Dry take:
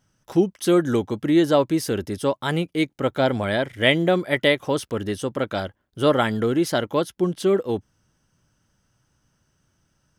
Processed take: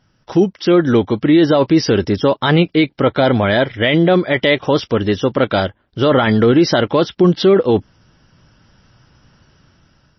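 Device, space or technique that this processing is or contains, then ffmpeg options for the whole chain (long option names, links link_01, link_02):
low-bitrate web radio: -af "dynaudnorm=framelen=630:gausssize=5:maxgain=14dB,alimiter=limit=-12dB:level=0:latency=1:release=14,volume=8.5dB" -ar 22050 -c:a libmp3lame -b:a 24k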